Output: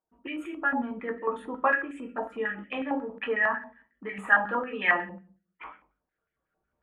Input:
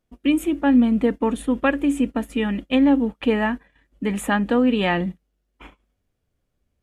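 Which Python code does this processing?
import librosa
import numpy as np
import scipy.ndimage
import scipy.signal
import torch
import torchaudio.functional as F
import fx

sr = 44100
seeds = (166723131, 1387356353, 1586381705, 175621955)

y = fx.envelope_sharpen(x, sr, power=1.5)
y = fx.recorder_agc(y, sr, target_db=-15.0, rise_db_per_s=7.2, max_gain_db=30)
y = fx.doubler(y, sr, ms=20.0, db=-13.5)
y = fx.room_shoebox(y, sr, seeds[0], volume_m3=31.0, walls='mixed', distance_m=0.55)
y = fx.filter_held_bandpass(y, sr, hz=11.0, low_hz=920.0, high_hz=1900.0)
y = F.gain(torch.from_numpy(y), 5.0).numpy()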